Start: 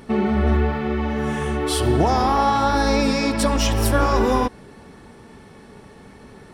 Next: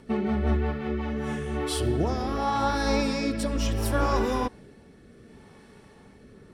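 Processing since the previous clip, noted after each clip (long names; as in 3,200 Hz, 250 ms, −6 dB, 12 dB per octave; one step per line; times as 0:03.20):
rotating-speaker cabinet horn 5.5 Hz, later 0.7 Hz, at 0:00.91
level −5 dB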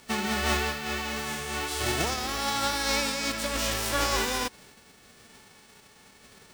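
spectral envelope flattened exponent 0.3
parametric band 12,000 Hz −9 dB 0.47 octaves
level −2.5 dB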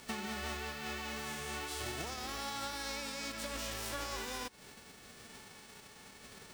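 downward compressor 5 to 1, threshold −39 dBFS, peak gain reduction 15.5 dB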